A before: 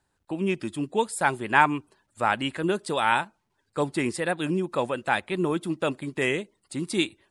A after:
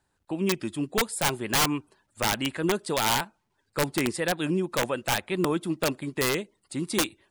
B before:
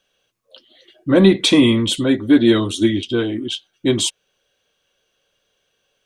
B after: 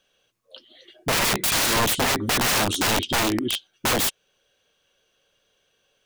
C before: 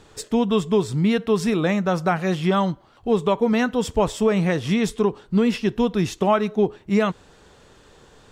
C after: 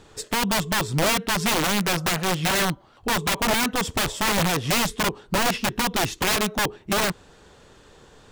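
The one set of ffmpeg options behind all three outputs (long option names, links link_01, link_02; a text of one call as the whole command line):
ffmpeg -i in.wav -af "aeval=exprs='(mod(6.68*val(0)+1,2)-1)/6.68':channel_layout=same" out.wav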